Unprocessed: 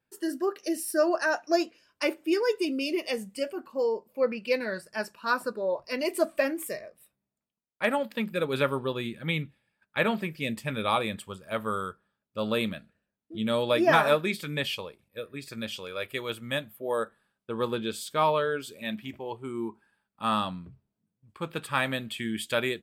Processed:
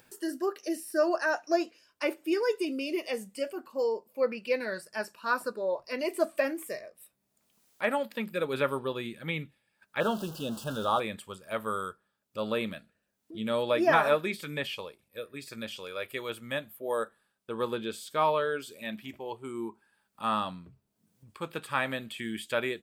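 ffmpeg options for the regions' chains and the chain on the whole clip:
-filter_complex "[0:a]asettb=1/sr,asplit=3[s0][s1][s2];[s0]atrim=end=10.004[s3];[s1]atrim=start=10:end=11,asetpts=PTS-STARTPTS,afade=t=in:d=0.004:c=qsin,afade=t=out:st=0.996:d=0.004:c=qsin,aeval=exprs='val(0)+0.5*0.0168*sgn(val(0))':c=same,asuperstop=centerf=2100:order=12:qfactor=1.9[s4];[s2]atrim=start=10.996[s5];[s3][s4]acrossfade=d=0.004:c1=hsin:c2=qsin[s6];[s6][s5]acrossfade=d=0.004:c1=qsin:c2=hsin,acrossover=split=2800[s7][s8];[s8]acompressor=threshold=0.00562:ratio=4:attack=1:release=60[s9];[s7][s9]amix=inputs=2:normalize=0,bass=f=250:g=-5,treble=f=4000:g=5,acompressor=mode=upward:threshold=0.00631:ratio=2.5,volume=0.841"

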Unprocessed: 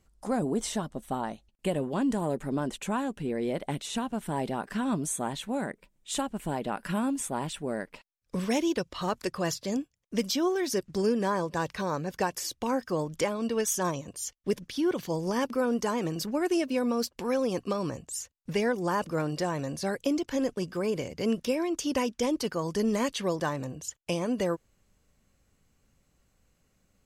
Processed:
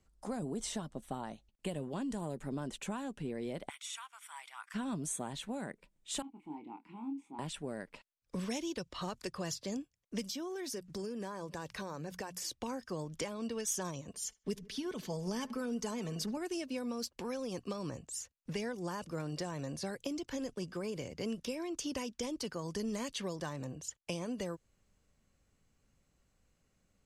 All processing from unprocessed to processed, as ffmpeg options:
-filter_complex "[0:a]asettb=1/sr,asplit=3[s0][s1][s2];[s0]atrim=end=3.694[s3];[s1]atrim=start=3.69:end=4.74,asetpts=PTS-STARTPTS,afade=t=in:d=0.004:c=qsin,afade=t=out:st=1.046:d=0.004:c=qsin,highpass=f=1300:w=0.5412,highpass=f=1300:w=1.3066,equalizer=f=4300:w=4.6:g=-8,aecho=1:1:0.9:0.44,atrim=end_sample=46305[s4];[s2]atrim=start=4.736[s5];[s3][s4]acrossfade=d=0.004:c1=hsin:c2=qsin[s6];[s6][s5]acrossfade=d=0.004:c1=qsin:c2=hsin,asettb=1/sr,asplit=3[s7][s8][s9];[s7]atrim=end=6.224[s10];[s8]atrim=start=6.22:end=7.39,asetpts=PTS-STARTPTS,afade=t=in:d=0.004:c=qsin,afade=t=out:st=1.166:d=0.004:c=qsin,asplit=3[s11][s12][s13];[s11]bandpass=f=300:t=q:w=8,volume=1[s14];[s12]bandpass=f=870:t=q:w=8,volume=0.501[s15];[s13]bandpass=f=2240:t=q:w=8,volume=0.355[s16];[s14][s15][s16]amix=inputs=3:normalize=0,acompressor=mode=upward:threshold=0.00251:ratio=2.5:attack=3.2:release=140:knee=2.83:detection=peak,asplit=2[s17][s18];[s18]adelay=26,volume=0.501[s19];[s17][s19]amix=inputs=2:normalize=0,atrim=end_sample=51597[s20];[s9]atrim=start=7.386[s21];[s10][s20]acrossfade=d=0.004:c1=hsin:c2=qsin[s22];[s22][s21]acrossfade=d=0.004:c1=qsin:c2=hsin,asettb=1/sr,asplit=3[s23][s24][s25];[s23]atrim=end=10.274[s26];[s24]atrim=start=10.27:end=12.42,asetpts=PTS-STARTPTS,afade=t=in:d=0.004:c=qsin,afade=t=out:st=2.146:d=0.004:c=qsin,highshelf=f=9500:g=10,bandreject=f=60:t=h:w=6,bandreject=f=120:t=h:w=6,bandreject=f=180:t=h:w=6,acompressor=threshold=0.0251:ratio=4:attack=3.2:release=140:knee=1:detection=peak[s27];[s25]atrim=start=12.416[s28];[s26][s27]acrossfade=d=0.004:c1=hsin:c2=qsin[s29];[s29][s28]acrossfade=d=0.004:c1=qsin:c2=hsin,asettb=1/sr,asplit=3[s30][s31][s32];[s30]atrim=end=14.094[s33];[s31]atrim=start=14.09:end=16.37,asetpts=PTS-STARTPTS,afade=t=in:d=0.004:c=qsin,afade=t=out:st=2.276:d=0.004:c=qsin,aecho=1:1:4.6:0.59,atrim=end_sample=100548,asplit=2[s34][s35];[s35]adelay=75,lowpass=f=2500:p=1,volume=0.0841,asplit=2[s36][s37];[s37]adelay=75,lowpass=f=2500:p=1,volume=0.47,asplit=2[s38][s39];[s39]adelay=75,lowpass=f=2500:p=1,volume=0.47[s40];[s34][s36][s38][s40]amix=inputs=4:normalize=0,atrim=end_sample=100548[s41];[s32]atrim=start=16.366[s42];[s33][s41]acrossfade=d=0.004:c1=hsin:c2=qsin[s43];[s43][s42]acrossfade=d=0.004:c1=qsin:c2=hsin,lowpass=11000,acrossover=split=160|3000[s44][s45][s46];[s45]acompressor=threshold=0.0251:ratio=6[s47];[s44][s47][s46]amix=inputs=3:normalize=0,volume=0.562"

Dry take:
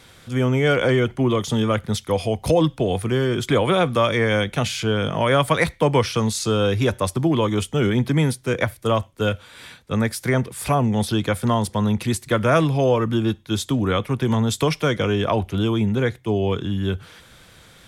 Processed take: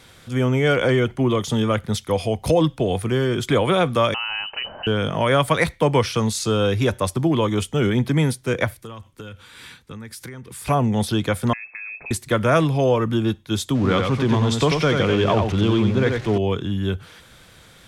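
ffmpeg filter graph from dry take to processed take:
-filter_complex "[0:a]asettb=1/sr,asplit=3[s0][s1][s2];[s0]atrim=end=4.144[s3];[s1]atrim=start=4.14:end=4.87,asetpts=PTS-STARTPTS,afade=t=in:d=0.004:c=qsin,afade=t=out:st=0.726:d=0.004:c=qsin,acompressor=threshold=0.0501:ratio=3:attack=3.2:release=140:knee=1:detection=peak,lowpass=f=2600:t=q:w=0.5098,lowpass=f=2600:t=q:w=0.6013,lowpass=f=2600:t=q:w=0.9,lowpass=f=2600:t=q:w=2.563,afreqshift=-3100[s4];[s2]atrim=start=4.866[s5];[s3][s4]acrossfade=d=0.004:c1=hsin:c2=qsin[s6];[s6][s5]acrossfade=d=0.004:c1=qsin:c2=hsin,asettb=1/sr,asplit=3[s7][s8][s9];[s7]atrim=end=8.814[s10];[s8]atrim=start=8.81:end=10.68,asetpts=PTS-STARTPTS,afade=t=in:d=0.004:c=qsin,afade=t=out:st=1.866:d=0.004:c=qsin,equalizer=f=630:w=3.1:g=-11,acompressor=threshold=0.0251:ratio=16:attack=3.2:release=140:knee=1:detection=peak[s11];[s9]atrim=start=10.676[s12];[s10][s11]acrossfade=d=0.004:c1=hsin:c2=qsin[s13];[s13][s12]acrossfade=d=0.004:c1=qsin:c2=hsin,asettb=1/sr,asplit=3[s14][s15][s16];[s14]atrim=end=11.534[s17];[s15]atrim=start=11.53:end=12.11,asetpts=PTS-STARTPTS,afade=t=in:d=0.004:c=qsin,afade=t=out:st=0.576:d=0.004:c=qsin,acompressor=threshold=0.0282:ratio=10:attack=3.2:release=140:knee=1:detection=peak,lowpass=f=2300:t=q:w=0.5098,lowpass=f=2300:t=q:w=0.6013,lowpass=f=2300:t=q:w=0.9,lowpass=f=2300:t=q:w=2.563,afreqshift=-2700[s18];[s16]atrim=start=12.106[s19];[s17][s18]acrossfade=d=0.004:c1=hsin:c2=qsin[s20];[s20][s19]acrossfade=d=0.004:c1=qsin:c2=hsin,asettb=1/sr,asplit=3[s21][s22][s23];[s21]atrim=end=13.754[s24];[s22]atrim=start=13.75:end=16.38,asetpts=PTS-STARTPTS,afade=t=in:d=0.004:c=qsin,afade=t=out:st=2.626:d=0.004:c=qsin,aeval=exprs='val(0)+0.5*0.0355*sgn(val(0))':c=same,lowpass=5800,aecho=1:1:91:0.596,atrim=end_sample=115983[s25];[s23]atrim=start=16.376[s26];[s24][s25]acrossfade=d=0.004:c1=hsin:c2=qsin[s27];[s27][s26]acrossfade=d=0.004:c1=qsin:c2=hsin"

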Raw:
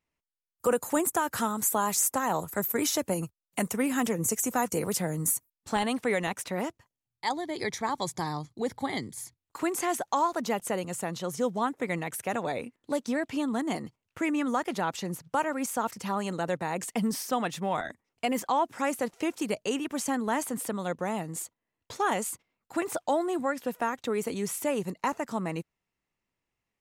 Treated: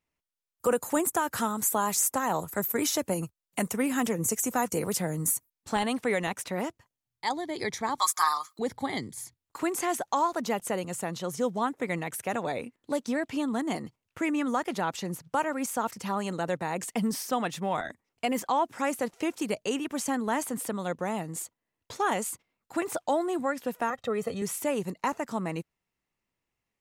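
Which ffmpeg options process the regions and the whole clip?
-filter_complex "[0:a]asettb=1/sr,asplit=3[s0][s1][s2];[s0]atrim=end=7.994[s3];[s1]atrim=start=7.99:end=8.59,asetpts=PTS-STARTPTS,afade=t=in:d=0.004:c=qsin,afade=t=out:st=0.596:d=0.004:c=qsin,highpass=f=1200:t=q:w=9.9,aemphasis=mode=production:type=50fm,aecho=1:1:6.4:0.67,atrim=end_sample=26460[s4];[s2]atrim=start=8.586[s5];[s3][s4]acrossfade=d=0.004:c1=hsin:c2=qsin[s6];[s6][s5]acrossfade=d=0.004:c1=qsin:c2=hsin,asettb=1/sr,asplit=3[s7][s8][s9];[s7]atrim=end=23.904[s10];[s8]atrim=start=23.9:end=24.42,asetpts=PTS-STARTPTS,afade=t=in:d=0.004:c=qsin,afade=t=out:st=0.516:d=0.004:c=qsin,highshelf=f=3900:g=-11,bandreject=f=2400:w=15,aecho=1:1:1.6:0.83,atrim=end_sample=22932[s11];[s9]atrim=start=24.416[s12];[s10][s11]acrossfade=d=0.004:c1=hsin:c2=qsin[s13];[s13][s12]acrossfade=d=0.004:c1=qsin:c2=hsin"

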